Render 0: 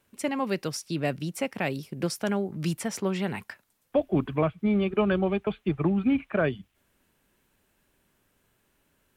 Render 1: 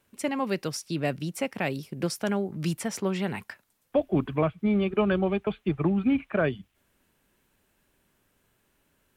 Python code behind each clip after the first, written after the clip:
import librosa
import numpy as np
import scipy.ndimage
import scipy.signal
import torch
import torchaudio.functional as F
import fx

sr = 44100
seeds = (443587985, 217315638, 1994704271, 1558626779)

y = x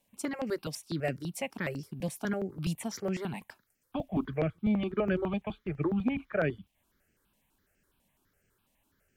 y = fx.phaser_held(x, sr, hz=12.0, low_hz=370.0, high_hz=3700.0)
y = y * 10.0 ** (-2.0 / 20.0)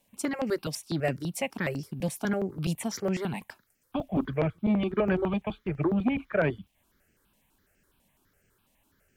y = fx.transformer_sat(x, sr, knee_hz=340.0)
y = y * 10.0 ** (4.5 / 20.0)